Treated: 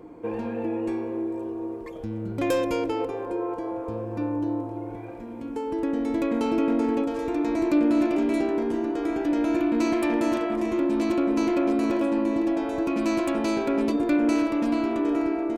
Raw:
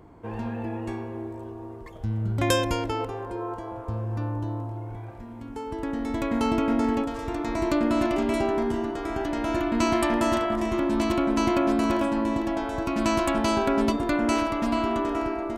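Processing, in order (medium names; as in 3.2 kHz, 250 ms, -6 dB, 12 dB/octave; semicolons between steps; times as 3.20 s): bass shelf 170 Hz -7 dB; comb 5.6 ms, depth 31%; in parallel at 0 dB: compression, threshold -34 dBFS, peak gain reduction 15 dB; on the sum: saturation -17 dBFS, distortion -18 dB; small resonant body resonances 300/460/2400 Hz, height 14 dB, ringing for 50 ms; trim -6 dB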